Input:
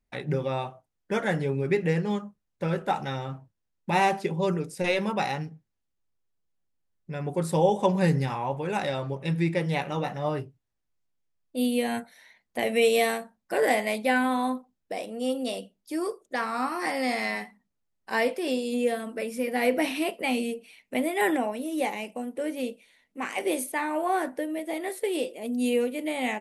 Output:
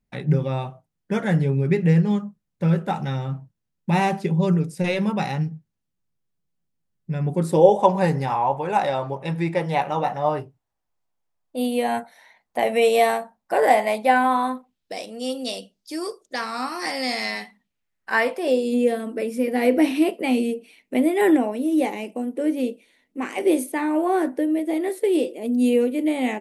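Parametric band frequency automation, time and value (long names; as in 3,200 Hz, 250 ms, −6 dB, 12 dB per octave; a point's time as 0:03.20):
parametric band +11 dB 1.2 octaves
0:07.29 160 Hz
0:07.85 830 Hz
0:14.25 830 Hz
0:14.95 5,100 Hz
0:17.31 5,100 Hz
0:18.32 1,100 Hz
0:18.66 320 Hz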